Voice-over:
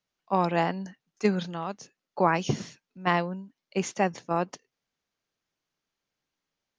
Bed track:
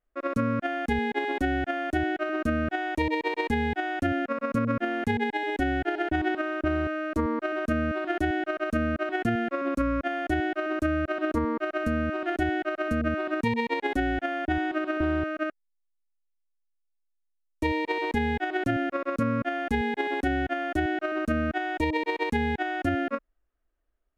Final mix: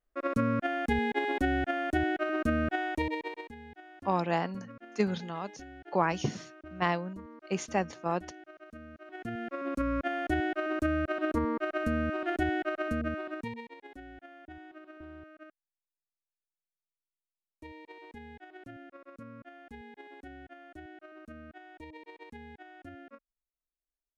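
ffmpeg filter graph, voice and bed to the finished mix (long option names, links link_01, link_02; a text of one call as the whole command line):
ffmpeg -i stem1.wav -i stem2.wav -filter_complex "[0:a]adelay=3750,volume=-4dB[link_01];[1:a]volume=16.5dB,afade=type=out:start_time=2.79:duration=0.73:silence=0.105925,afade=type=in:start_time=9.02:duration=1.02:silence=0.11885,afade=type=out:start_time=12.71:duration=1.01:silence=0.11885[link_02];[link_01][link_02]amix=inputs=2:normalize=0" out.wav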